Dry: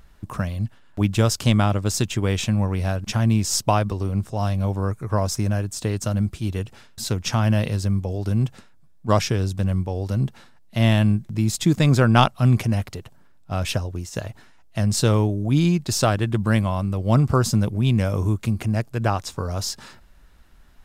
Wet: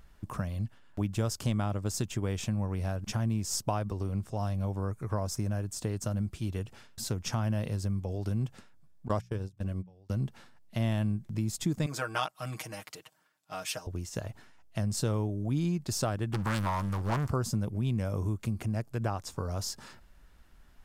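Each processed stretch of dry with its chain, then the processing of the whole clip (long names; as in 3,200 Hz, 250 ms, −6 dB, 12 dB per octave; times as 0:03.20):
0:09.08–0:10.10: noise gate −21 dBFS, range −27 dB + mains-hum notches 60/120/180 Hz
0:11.86–0:13.87: high-pass filter 1,400 Hz 6 dB per octave + comb filter 6.4 ms, depth 98%
0:16.33–0:17.30: leveller curve on the samples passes 3 + low shelf with overshoot 750 Hz −8.5 dB, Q 1.5 + highs frequency-modulated by the lows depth 0.45 ms
whole clip: notch filter 3,900 Hz, Q 23; dynamic equaliser 2,900 Hz, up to −5 dB, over −41 dBFS, Q 0.8; downward compressor 2 to 1, threshold −25 dBFS; level −5.5 dB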